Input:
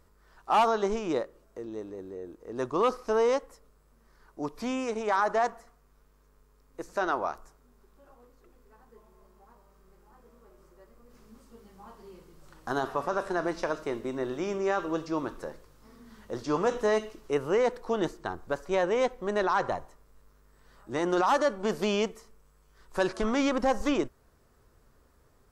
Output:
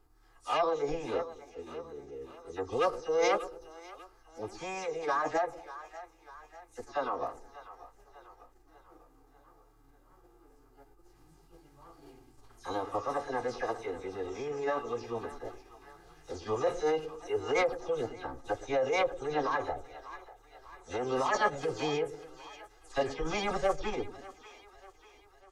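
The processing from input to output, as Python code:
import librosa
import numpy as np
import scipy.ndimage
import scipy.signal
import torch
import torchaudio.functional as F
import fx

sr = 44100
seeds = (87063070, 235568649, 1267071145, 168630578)

y = fx.spec_delay(x, sr, highs='early', ms=104)
y = y + 0.66 * np.pad(y, (int(1.8 * sr / 1000.0), 0))[:len(y)]
y = fx.echo_split(y, sr, split_hz=650.0, low_ms=106, high_ms=593, feedback_pct=52, wet_db=-14)
y = fx.pitch_keep_formants(y, sr, semitones=-5.5)
y = y * 10.0 ** (-5.0 / 20.0)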